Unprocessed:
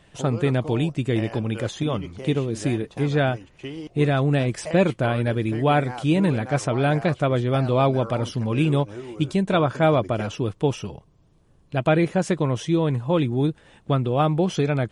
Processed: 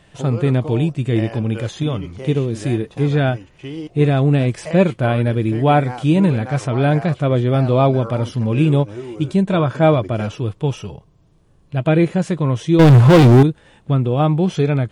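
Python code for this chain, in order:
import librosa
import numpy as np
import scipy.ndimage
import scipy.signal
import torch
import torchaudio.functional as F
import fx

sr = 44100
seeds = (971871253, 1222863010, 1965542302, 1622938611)

y = fx.leveller(x, sr, passes=5, at=(12.79, 13.43))
y = fx.hpss(y, sr, part='harmonic', gain_db=9)
y = F.gain(torch.from_numpy(y), -2.5).numpy()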